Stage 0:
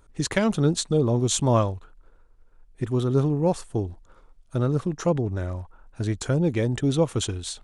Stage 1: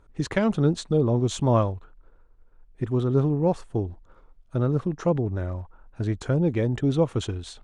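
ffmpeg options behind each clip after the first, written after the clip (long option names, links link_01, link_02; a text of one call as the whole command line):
ffmpeg -i in.wav -af "aemphasis=mode=reproduction:type=75kf" out.wav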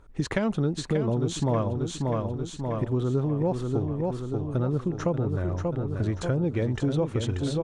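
ffmpeg -i in.wav -filter_complex "[0:a]asplit=2[link_01][link_02];[link_02]aecho=0:1:585|1170|1755|2340|2925|3510:0.447|0.232|0.121|0.0628|0.0327|0.017[link_03];[link_01][link_03]amix=inputs=2:normalize=0,acompressor=threshold=-27dB:ratio=3,volume=3dB" out.wav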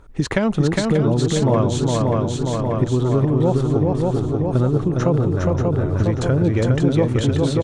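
ffmpeg -i in.wav -af "aecho=1:1:409:0.708,volume=7dB" out.wav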